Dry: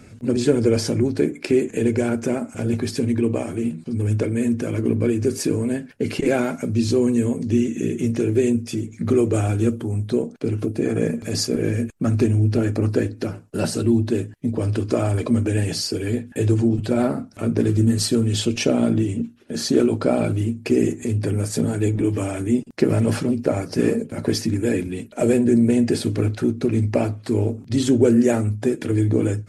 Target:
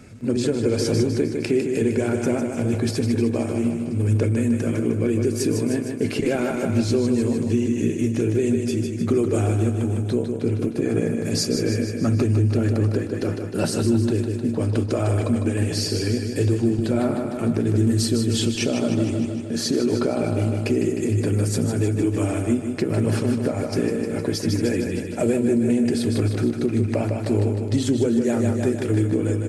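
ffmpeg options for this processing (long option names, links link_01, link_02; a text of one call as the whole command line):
ffmpeg -i in.wav -filter_complex "[0:a]asplit=2[link_01][link_02];[link_02]aecho=0:1:154|308|462|616|770|924|1078|1232:0.473|0.274|0.159|0.0923|0.0535|0.0311|0.018|0.0104[link_03];[link_01][link_03]amix=inputs=2:normalize=0,alimiter=limit=-11dB:level=0:latency=1:release=284" out.wav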